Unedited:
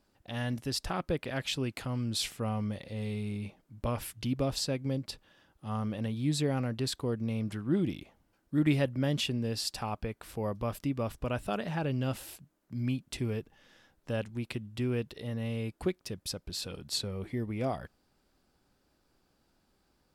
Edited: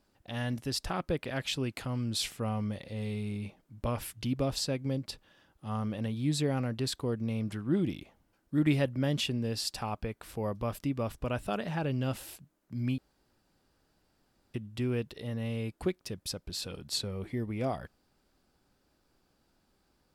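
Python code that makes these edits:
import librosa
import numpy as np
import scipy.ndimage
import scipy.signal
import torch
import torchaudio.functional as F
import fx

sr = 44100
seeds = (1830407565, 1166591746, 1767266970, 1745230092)

y = fx.edit(x, sr, fx.room_tone_fill(start_s=12.98, length_s=1.56), tone=tone)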